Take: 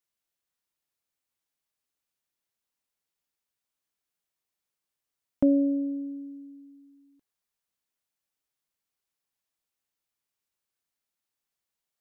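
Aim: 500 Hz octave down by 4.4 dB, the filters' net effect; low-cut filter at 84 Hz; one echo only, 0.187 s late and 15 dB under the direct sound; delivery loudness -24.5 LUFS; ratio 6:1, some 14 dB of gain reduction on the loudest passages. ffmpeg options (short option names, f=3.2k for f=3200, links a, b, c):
-af "highpass=84,equalizer=f=500:t=o:g=-5,acompressor=threshold=-35dB:ratio=6,aecho=1:1:187:0.178,volume=16dB"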